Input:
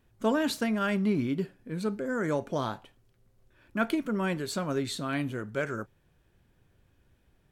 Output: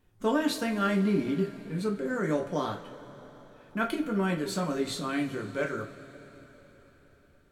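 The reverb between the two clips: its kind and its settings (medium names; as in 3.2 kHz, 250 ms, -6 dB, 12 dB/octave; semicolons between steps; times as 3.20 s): two-slope reverb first 0.24 s, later 4.5 s, from -22 dB, DRR 0.5 dB; trim -2.5 dB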